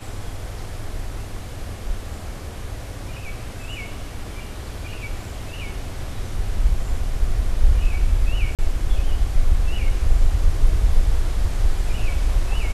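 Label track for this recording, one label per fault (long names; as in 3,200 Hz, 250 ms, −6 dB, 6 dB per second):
8.550000	8.590000	drop-out 37 ms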